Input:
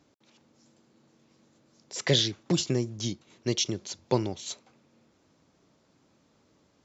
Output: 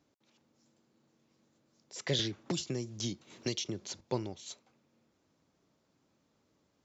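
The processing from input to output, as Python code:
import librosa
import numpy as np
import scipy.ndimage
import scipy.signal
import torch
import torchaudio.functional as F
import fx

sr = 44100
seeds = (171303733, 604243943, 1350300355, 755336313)

y = fx.band_squash(x, sr, depth_pct=100, at=(2.19, 4.01))
y = y * librosa.db_to_amplitude(-8.5)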